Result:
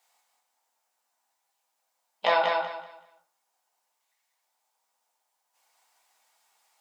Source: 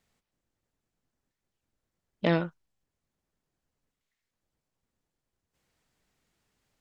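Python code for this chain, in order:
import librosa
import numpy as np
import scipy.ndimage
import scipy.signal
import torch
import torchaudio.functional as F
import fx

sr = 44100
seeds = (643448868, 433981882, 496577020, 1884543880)

p1 = fx.highpass_res(x, sr, hz=840.0, q=4.9)
p2 = fx.high_shelf(p1, sr, hz=3800.0, db=11.5)
p3 = p2 + fx.echo_feedback(p2, sr, ms=190, feedback_pct=26, wet_db=-4.0, dry=0)
p4 = fx.room_shoebox(p3, sr, seeds[0], volume_m3=130.0, walls='furnished', distance_m=1.8)
y = F.gain(torch.from_numpy(p4), -2.5).numpy()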